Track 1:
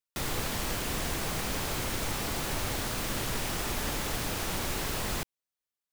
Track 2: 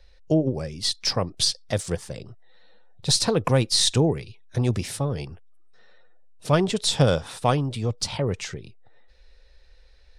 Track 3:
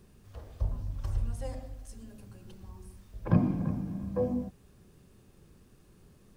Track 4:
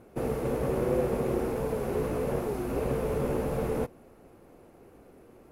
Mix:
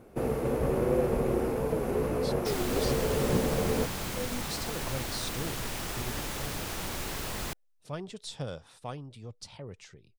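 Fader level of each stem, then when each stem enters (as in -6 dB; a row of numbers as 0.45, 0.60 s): -3.0, -18.0, -8.0, +0.5 dB; 2.30, 1.40, 0.00, 0.00 s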